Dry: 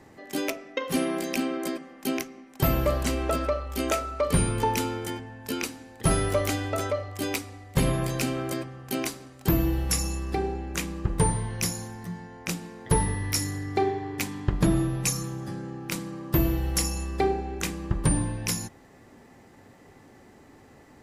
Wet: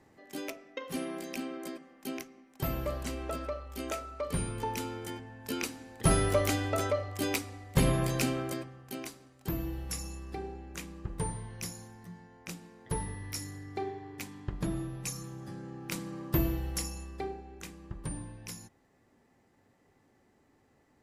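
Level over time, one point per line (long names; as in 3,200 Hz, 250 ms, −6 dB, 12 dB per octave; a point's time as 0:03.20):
0:04.61 −10 dB
0:05.92 −2 dB
0:08.26 −2 dB
0:09.00 −11.5 dB
0:15.01 −11.5 dB
0:16.21 −3.5 dB
0:17.43 −15 dB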